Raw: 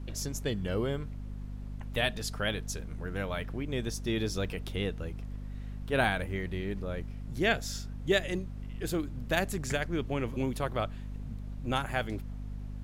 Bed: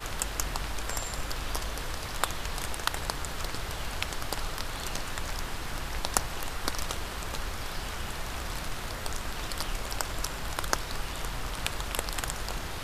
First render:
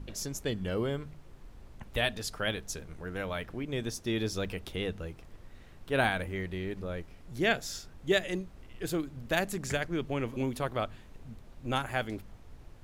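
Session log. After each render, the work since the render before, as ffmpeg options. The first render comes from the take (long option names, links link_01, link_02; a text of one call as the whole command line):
ffmpeg -i in.wav -af "bandreject=frequency=50:width_type=h:width=4,bandreject=frequency=100:width_type=h:width=4,bandreject=frequency=150:width_type=h:width=4,bandreject=frequency=200:width_type=h:width=4,bandreject=frequency=250:width_type=h:width=4" out.wav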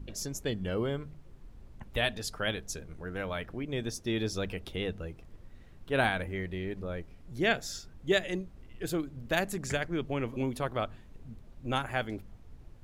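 ffmpeg -i in.wav -af "afftdn=noise_reduction=6:noise_floor=-53" out.wav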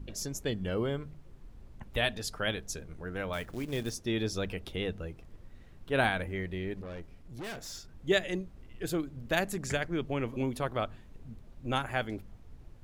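ffmpeg -i in.wav -filter_complex "[0:a]asettb=1/sr,asplit=3[link_01][link_02][link_03];[link_01]atrim=end=3.334[link_04];[link_02]atrim=start=3.33:end=3.95,asetpts=PTS-STARTPTS,afade=type=in:duration=0.004:curve=qsin,afade=type=out:start_time=0.616:duration=0.004:curve=qsin,acrusher=bits=4:mode=log:mix=0:aa=0.000001[link_05];[link_03]atrim=start=3.946[link_06];[link_04][link_05]acrossfade=duration=0.004:curve1=hsin:curve2=qsin[link_07];[link_07][link_06]acrossfade=duration=0.004:curve1=qsin:curve2=hsin,asettb=1/sr,asplit=3[link_08][link_09][link_10];[link_08]atrim=end=6.814[link_11];[link_09]atrim=start=6.81:end=7.93,asetpts=PTS-STARTPTS,afade=type=in:duration=0.004:curve=qsin,afade=type=out:start_time=1.116:duration=0.004:curve=qsin,aeval=exprs='(tanh(79.4*val(0)+0.25)-tanh(0.25))/79.4':channel_layout=same[link_12];[link_10]atrim=start=7.926[link_13];[link_11][link_12]acrossfade=duration=0.004:curve1=hsin:curve2=qsin[link_14];[link_14][link_13]acrossfade=duration=0.004:curve1=qsin:curve2=hsin" out.wav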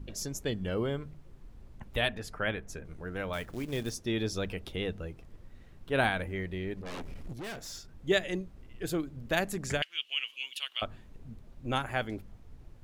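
ffmpeg -i in.wav -filter_complex "[0:a]asettb=1/sr,asplit=3[link_01][link_02][link_03];[link_01]atrim=end=2.084[link_04];[link_02]atrim=start=2.08:end=2.85,asetpts=PTS-STARTPTS,afade=type=in:duration=0.004:curve=qsin,afade=type=out:start_time=0.766:duration=0.004:curve=qsin,highshelf=frequency=2900:width_type=q:width=1.5:gain=-8[link_05];[link_03]atrim=start=2.846[link_06];[link_04][link_05]acrossfade=duration=0.004:curve1=hsin:curve2=qsin[link_07];[link_07][link_06]acrossfade=duration=0.004:curve1=qsin:curve2=hsin,asplit=3[link_08][link_09][link_10];[link_08]afade=type=out:start_time=6.85:duration=0.02[link_11];[link_09]aeval=exprs='0.0158*sin(PI/2*2.51*val(0)/0.0158)':channel_layout=same,afade=type=in:start_time=6.85:duration=0.02,afade=type=out:start_time=7.32:duration=0.02[link_12];[link_10]afade=type=in:start_time=7.32:duration=0.02[link_13];[link_11][link_12][link_13]amix=inputs=3:normalize=0,asettb=1/sr,asplit=3[link_14][link_15][link_16];[link_14]atrim=end=9.824[link_17];[link_15]atrim=start=9.82:end=10.82,asetpts=PTS-STARTPTS,afade=type=in:duration=0.004:curve=qsin,afade=type=out:start_time=0.996:duration=0.004:curve=qsin,highpass=frequency=2900:width_type=q:width=14[link_18];[link_16]atrim=start=10.816[link_19];[link_17][link_18]acrossfade=duration=0.004:curve1=hsin:curve2=qsin[link_20];[link_20][link_19]acrossfade=duration=0.004:curve1=qsin:curve2=hsin" out.wav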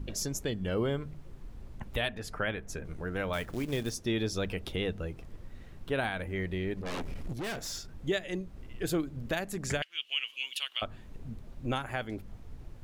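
ffmpeg -i in.wav -filter_complex "[0:a]asplit=2[link_01][link_02];[link_02]acompressor=threshold=-40dB:ratio=6,volume=-2dB[link_03];[link_01][link_03]amix=inputs=2:normalize=0,alimiter=limit=-20dB:level=0:latency=1:release=375" out.wav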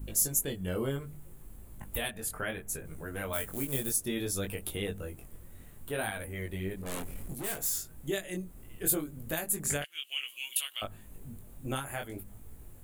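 ffmpeg -i in.wav -af "flanger=delay=19:depth=3.5:speed=0.64,aexciter=amount=5:drive=9.5:freq=7700" out.wav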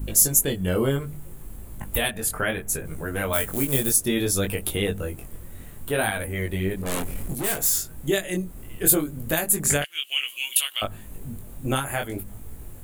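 ffmpeg -i in.wav -af "volume=10dB" out.wav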